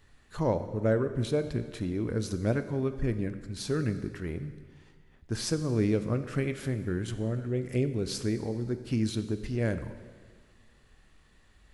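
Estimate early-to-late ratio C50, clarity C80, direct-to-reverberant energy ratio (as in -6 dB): 11.5 dB, 12.5 dB, 10.0 dB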